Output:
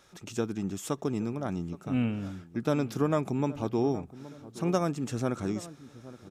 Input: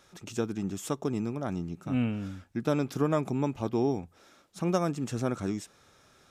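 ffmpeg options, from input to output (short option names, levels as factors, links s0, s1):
-filter_complex "[0:a]asplit=2[s0][s1];[s1]adelay=821,lowpass=f=1100:p=1,volume=0.158,asplit=2[s2][s3];[s3]adelay=821,lowpass=f=1100:p=1,volume=0.46,asplit=2[s4][s5];[s5]adelay=821,lowpass=f=1100:p=1,volume=0.46,asplit=2[s6][s7];[s7]adelay=821,lowpass=f=1100:p=1,volume=0.46[s8];[s0][s2][s4][s6][s8]amix=inputs=5:normalize=0"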